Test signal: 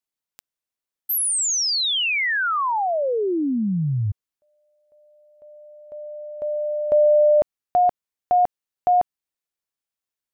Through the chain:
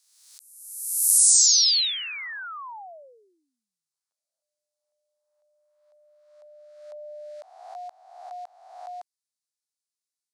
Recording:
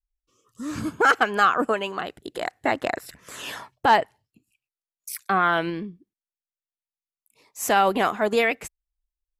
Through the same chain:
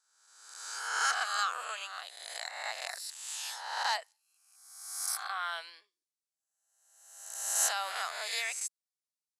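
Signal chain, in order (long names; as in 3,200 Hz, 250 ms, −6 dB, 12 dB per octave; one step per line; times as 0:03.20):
peak hold with a rise ahead of every peak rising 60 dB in 1.08 s
Bessel high-pass filter 1,100 Hz, order 6
flat-topped bell 6,400 Hz +13.5 dB
level −13.5 dB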